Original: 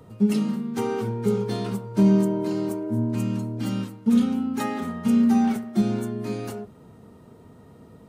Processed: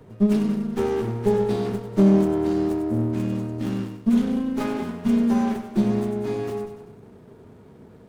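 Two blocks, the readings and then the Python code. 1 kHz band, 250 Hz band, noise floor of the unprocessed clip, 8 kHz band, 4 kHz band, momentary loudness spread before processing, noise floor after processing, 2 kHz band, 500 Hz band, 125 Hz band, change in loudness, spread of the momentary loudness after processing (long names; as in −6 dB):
+0.5 dB, +0.5 dB, −49 dBFS, can't be measured, −1.5 dB, 10 LU, −48 dBFS, +0.5 dB, +4.5 dB, +0.5 dB, +1.0 dB, 8 LU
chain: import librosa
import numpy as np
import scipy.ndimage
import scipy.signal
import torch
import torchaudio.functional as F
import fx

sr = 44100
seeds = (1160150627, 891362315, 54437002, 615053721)

p1 = fx.small_body(x, sr, hz=(390.0, 2100.0, 3400.0), ring_ms=45, db=7)
p2 = p1 + fx.echo_feedback(p1, sr, ms=96, feedback_pct=55, wet_db=-10.5, dry=0)
y = fx.running_max(p2, sr, window=17)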